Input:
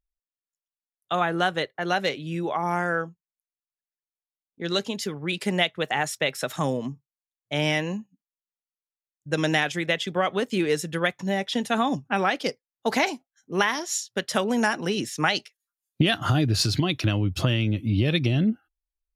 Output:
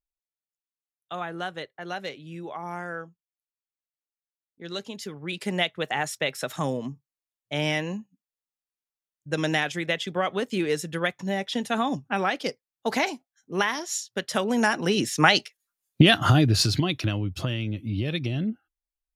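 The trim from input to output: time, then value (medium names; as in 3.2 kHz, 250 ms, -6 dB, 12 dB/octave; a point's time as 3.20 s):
4.67 s -9 dB
5.66 s -2 dB
14.31 s -2 dB
15.20 s +5 dB
16.17 s +5 dB
17.39 s -5.5 dB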